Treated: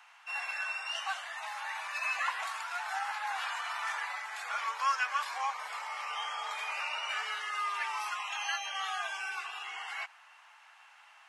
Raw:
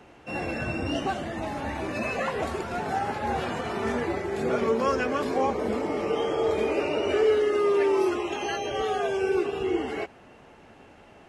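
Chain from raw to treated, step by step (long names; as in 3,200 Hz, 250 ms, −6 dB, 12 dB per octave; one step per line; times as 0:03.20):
Butterworth high-pass 930 Hz 36 dB per octave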